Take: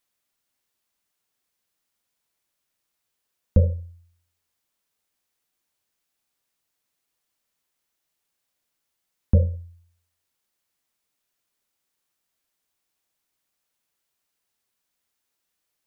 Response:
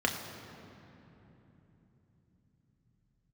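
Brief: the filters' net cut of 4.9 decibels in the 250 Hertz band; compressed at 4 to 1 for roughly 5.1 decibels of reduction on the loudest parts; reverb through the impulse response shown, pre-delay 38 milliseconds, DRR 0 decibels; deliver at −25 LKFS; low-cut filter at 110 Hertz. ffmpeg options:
-filter_complex "[0:a]highpass=110,equalizer=frequency=250:width_type=o:gain=-6.5,acompressor=threshold=-23dB:ratio=4,asplit=2[link_01][link_02];[1:a]atrim=start_sample=2205,adelay=38[link_03];[link_02][link_03]afir=irnorm=-1:irlink=0,volume=-9.5dB[link_04];[link_01][link_04]amix=inputs=2:normalize=0,volume=11.5dB"

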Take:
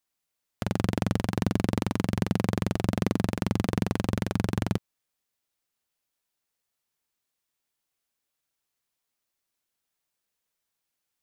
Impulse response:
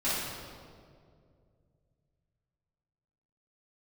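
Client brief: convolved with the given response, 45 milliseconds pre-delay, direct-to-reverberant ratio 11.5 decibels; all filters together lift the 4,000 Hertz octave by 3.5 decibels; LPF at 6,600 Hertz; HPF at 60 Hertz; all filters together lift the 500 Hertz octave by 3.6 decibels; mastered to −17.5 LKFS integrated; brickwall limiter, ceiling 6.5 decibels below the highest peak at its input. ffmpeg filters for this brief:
-filter_complex "[0:a]highpass=60,lowpass=6600,equalizer=frequency=500:width_type=o:gain=4.5,equalizer=frequency=4000:width_type=o:gain=5,alimiter=limit=-14dB:level=0:latency=1,asplit=2[link_01][link_02];[1:a]atrim=start_sample=2205,adelay=45[link_03];[link_02][link_03]afir=irnorm=-1:irlink=0,volume=-21.5dB[link_04];[link_01][link_04]amix=inputs=2:normalize=0,volume=13.5dB"

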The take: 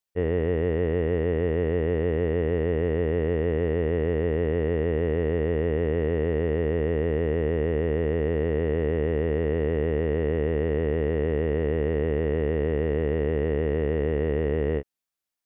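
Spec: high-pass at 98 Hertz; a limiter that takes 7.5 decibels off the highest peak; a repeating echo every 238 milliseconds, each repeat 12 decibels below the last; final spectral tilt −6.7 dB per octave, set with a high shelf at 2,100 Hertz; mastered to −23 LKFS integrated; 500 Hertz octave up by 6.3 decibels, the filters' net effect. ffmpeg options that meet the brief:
ffmpeg -i in.wav -af "highpass=98,equalizer=frequency=500:width_type=o:gain=7.5,highshelf=frequency=2100:gain=-4,alimiter=limit=-18.5dB:level=0:latency=1,aecho=1:1:238|476|714:0.251|0.0628|0.0157,volume=3dB" out.wav

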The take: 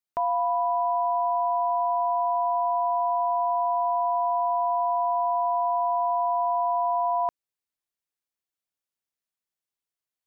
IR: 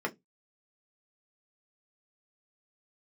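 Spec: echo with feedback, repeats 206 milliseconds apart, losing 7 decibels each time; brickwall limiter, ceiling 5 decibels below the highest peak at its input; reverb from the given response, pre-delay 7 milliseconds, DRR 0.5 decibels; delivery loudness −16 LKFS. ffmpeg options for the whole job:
-filter_complex "[0:a]alimiter=limit=-23.5dB:level=0:latency=1,aecho=1:1:206|412|618|824|1030:0.447|0.201|0.0905|0.0407|0.0183,asplit=2[link_01][link_02];[1:a]atrim=start_sample=2205,adelay=7[link_03];[link_02][link_03]afir=irnorm=-1:irlink=0,volume=-7dB[link_04];[link_01][link_04]amix=inputs=2:normalize=0,volume=7.5dB"

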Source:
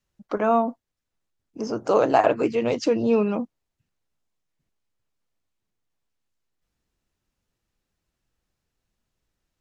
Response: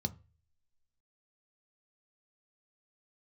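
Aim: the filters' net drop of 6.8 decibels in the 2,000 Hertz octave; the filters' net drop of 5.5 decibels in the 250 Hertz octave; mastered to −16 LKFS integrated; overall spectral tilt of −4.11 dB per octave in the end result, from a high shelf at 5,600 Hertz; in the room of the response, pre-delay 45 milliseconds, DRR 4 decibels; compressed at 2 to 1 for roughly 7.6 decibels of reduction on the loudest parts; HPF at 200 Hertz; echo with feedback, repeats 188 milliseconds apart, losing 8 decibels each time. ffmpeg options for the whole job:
-filter_complex "[0:a]highpass=200,equalizer=frequency=250:width_type=o:gain=-4.5,equalizer=frequency=2000:width_type=o:gain=-8.5,highshelf=frequency=5600:gain=-7.5,acompressor=threshold=-28dB:ratio=2,aecho=1:1:188|376|564|752|940:0.398|0.159|0.0637|0.0255|0.0102,asplit=2[link_01][link_02];[1:a]atrim=start_sample=2205,adelay=45[link_03];[link_02][link_03]afir=irnorm=-1:irlink=0,volume=-5dB[link_04];[link_01][link_04]amix=inputs=2:normalize=0,volume=11dB"

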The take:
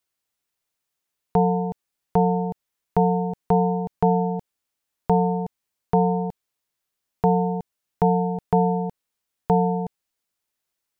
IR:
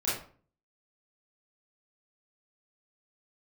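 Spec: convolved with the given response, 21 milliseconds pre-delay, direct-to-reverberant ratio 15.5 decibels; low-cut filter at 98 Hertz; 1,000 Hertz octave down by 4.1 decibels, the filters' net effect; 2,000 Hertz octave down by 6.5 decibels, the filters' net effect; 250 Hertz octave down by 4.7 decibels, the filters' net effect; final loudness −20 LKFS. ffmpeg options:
-filter_complex "[0:a]highpass=98,equalizer=frequency=250:width_type=o:gain=-8,equalizer=frequency=1000:width_type=o:gain=-4,equalizer=frequency=2000:width_type=o:gain=-7,asplit=2[link_01][link_02];[1:a]atrim=start_sample=2205,adelay=21[link_03];[link_02][link_03]afir=irnorm=-1:irlink=0,volume=-23.5dB[link_04];[link_01][link_04]amix=inputs=2:normalize=0,volume=7dB"

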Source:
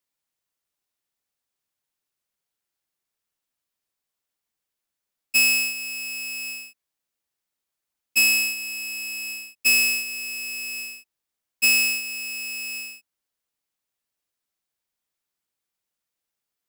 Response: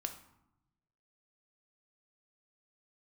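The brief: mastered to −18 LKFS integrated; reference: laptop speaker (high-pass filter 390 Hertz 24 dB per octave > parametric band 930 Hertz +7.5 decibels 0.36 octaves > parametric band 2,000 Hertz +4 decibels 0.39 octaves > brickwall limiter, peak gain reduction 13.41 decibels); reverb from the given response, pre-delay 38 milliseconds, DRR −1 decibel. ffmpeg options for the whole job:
-filter_complex "[0:a]asplit=2[link_01][link_02];[1:a]atrim=start_sample=2205,adelay=38[link_03];[link_02][link_03]afir=irnorm=-1:irlink=0,volume=2dB[link_04];[link_01][link_04]amix=inputs=2:normalize=0,highpass=frequency=390:width=0.5412,highpass=frequency=390:width=1.3066,equalizer=frequency=930:width_type=o:width=0.36:gain=7.5,equalizer=frequency=2000:width_type=o:width=0.39:gain=4,volume=3.5dB,alimiter=limit=-14.5dB:level=0:latency=1"

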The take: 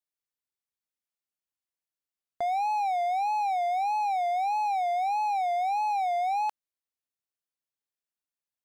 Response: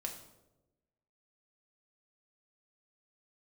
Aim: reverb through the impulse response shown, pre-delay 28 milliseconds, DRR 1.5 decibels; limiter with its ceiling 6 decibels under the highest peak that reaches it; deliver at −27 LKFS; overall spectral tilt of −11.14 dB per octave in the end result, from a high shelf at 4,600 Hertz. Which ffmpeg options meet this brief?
-filter_complex "[0:a]highshelf=frequency=4600:gain=-8.5,alimiter=level_in=5dB:limit=-24dB:level=0:latency=1,volume=-5dB,asplit=2[link_01][link_02];[1:a]atrim=start_sample=2205,adelay=28[link_03];[link_02][link_03]afir=irnorm=-1:irlink=0,volume=-1dB[link_04];[link_01][link_04]amix=inputs=2:normalize=0,volume=5dB"

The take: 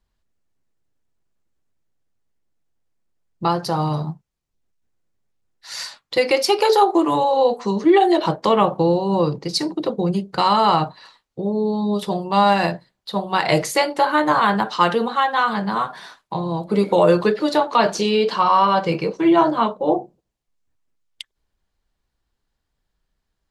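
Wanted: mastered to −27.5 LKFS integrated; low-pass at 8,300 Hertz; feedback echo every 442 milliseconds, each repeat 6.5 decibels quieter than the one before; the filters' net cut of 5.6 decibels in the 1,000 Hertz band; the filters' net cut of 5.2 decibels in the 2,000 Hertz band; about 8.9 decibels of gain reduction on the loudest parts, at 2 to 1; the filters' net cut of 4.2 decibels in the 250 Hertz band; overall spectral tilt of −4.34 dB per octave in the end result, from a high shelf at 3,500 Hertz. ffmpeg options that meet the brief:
ffmpeg -i in.wav -af "lowpass=8300,equalizer=frequency=250:width_type=o:gain=-6,equalizer=frequency=1000:width_type=o:gain=-5.5,equalizer=frequency=2000:width_type=o:gain=-3,highshelf=frequency=3500:gain=-6,acompressor=threshold=-30dB:ratio=2,aecho=1:1:442|884|1326|1768|2210|2652:0.473|0.222|0.105|0.0491|0.0231|0.0109,volume=1.5dB" out.wav

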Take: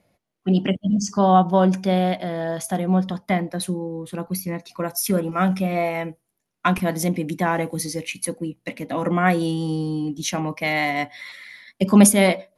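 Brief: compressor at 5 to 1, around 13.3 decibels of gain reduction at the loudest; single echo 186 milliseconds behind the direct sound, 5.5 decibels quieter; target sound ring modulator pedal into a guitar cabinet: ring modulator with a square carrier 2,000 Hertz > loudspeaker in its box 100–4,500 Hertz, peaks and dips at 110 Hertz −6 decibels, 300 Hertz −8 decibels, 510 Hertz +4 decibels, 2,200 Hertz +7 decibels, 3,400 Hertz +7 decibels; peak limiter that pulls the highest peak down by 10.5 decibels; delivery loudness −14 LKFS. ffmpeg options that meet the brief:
ffmpeg -i in.wav -af "acompressor=threshold=-23dB:ratio=5,alimiter=limit=-20dB:level=0:latency=1,aecho=1:1:186:0.531,aeval=exprs='val(0)*sgn(sin(2*PI*2000*n/s))':channel_layout=same,highpass=100,equalizer=frequency=110:width_type=q:width=4:gain=-6,equalizer=frequency=300:width_type=q:width=4:gain=-8,equalizer=frequency=510:width_type=q:width=4:gain=4,equalizer=frequency=2200:width_type=q:width=4:gain=7,equalizer=frequency=3400:width_type=q:width=4:gain=7,lowpass=frequency=4500:width=0.5412,lowpass=frequency=4500:width=1.3066,volume=8.5dB" out.wav

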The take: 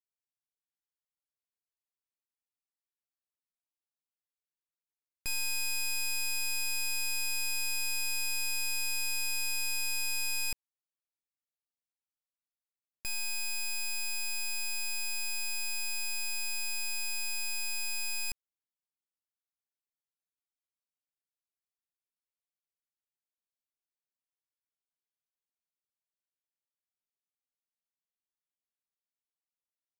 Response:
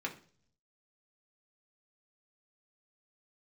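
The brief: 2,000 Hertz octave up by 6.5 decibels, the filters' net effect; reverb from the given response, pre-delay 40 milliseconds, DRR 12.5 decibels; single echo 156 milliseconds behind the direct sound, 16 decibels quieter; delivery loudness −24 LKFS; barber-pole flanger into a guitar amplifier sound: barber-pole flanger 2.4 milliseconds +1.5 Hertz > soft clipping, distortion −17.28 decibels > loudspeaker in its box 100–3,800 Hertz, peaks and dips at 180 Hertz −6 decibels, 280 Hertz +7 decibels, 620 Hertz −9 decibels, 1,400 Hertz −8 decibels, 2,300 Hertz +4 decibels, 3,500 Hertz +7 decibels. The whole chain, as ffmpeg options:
-filter_complex "[0:a]equalizer=frequency=2000:width_type=o:gain=5,aecho=1:1:156:0.158,asplit=2[link_01][link_02];[1:a]atrim=start_sample=2205,adelay=40[link_03];[link_02][link_03]afir=irnorm=-1:irlink=0,volume=-15.5dB[link_04];[link_01][link_04]amix=inputs=2:normalize=0,asplit=2[link_05][link_06];[link_06]adelay=2.4,afreqshift=1.5[link_07];[link_05][link_07]amix=inputs=2:normalize=1,asoftclip=threshold=-30.5dB,highpass=100,equalizer=frequency=180:width_type=q:width=4:gain=-6,equalizer=frequency=280:width_type=q:width=4:gain=7,equalizer=frequency=620:width_type=q:width=4:gain=-9,equalizer=frequency=1400:width_type=q:width=4:gain=-8,equalizer=frequency=2300:width_type=q:width=4:gain=4,equalizer=frequency=3500:width_type=q:width=4:gain=7,lowpass=frequency=3800:width=0.5412,lowpass=frequency=3800:width=1.3066,volume=9dB"

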